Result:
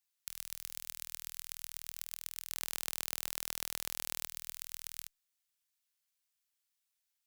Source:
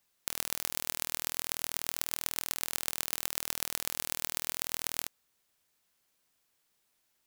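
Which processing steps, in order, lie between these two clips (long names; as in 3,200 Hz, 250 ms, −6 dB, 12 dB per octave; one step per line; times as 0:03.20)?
guitar amp tone stack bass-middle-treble 10-0-10
0:02.53–0:04.25: leveller curve on the samples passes 3
level −8 dB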